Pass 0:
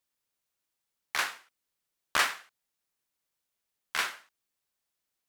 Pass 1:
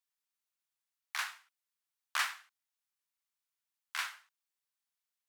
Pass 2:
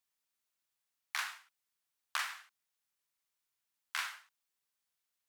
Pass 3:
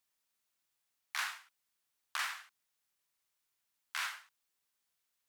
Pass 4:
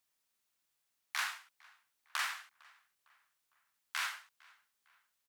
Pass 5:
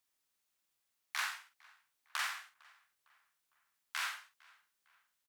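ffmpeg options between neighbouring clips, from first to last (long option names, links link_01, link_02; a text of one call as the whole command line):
ffmpeg -i in.wav -af "highpass=frequency=850:width=0.5412,highpass=frequency=850:width=1.3066,volume=-6.5dB" out.wav
ffmpeg -i in.wav -af "acompressor=threshold=-35dB:ratio=10,volume=3dB" out.wav
ffmpeg -i in.wav -af "alimiter=level_in=3dB:limit=-24dB:level=0:latency=1:release=43,volume=-3dB,volume=3dB" out.wav
ffmpeg -i in.wav -filter_complex "[0:a]asplit=2[link_01][link_02];[link_02]adelay=455,lowpass=frequency=3100:poles=1,volume=-24dB,asplit=2[link_03][link_04];[link_04]adelay=455,lowpass=frequency=3100:poles=1,volume=0.47,asplit=2[link_05][link_06];[link_06]adelay=455,lowpass=frequency=3100:poles=1,volume=0.47[link_07];[link_01][link_03][link_05][link_07]amix=inputs=4:normalize=0,volume=1dB" out.wav
ffmpeg -i in.wav -filter_complex "[0:a]asplit=2[link_01][link_02];[link_02]adelay=48,volume=-8dB[link_03];[link_01][link_03]amix=inputs=2:normalize=0,volume=-1.5dB" out.wav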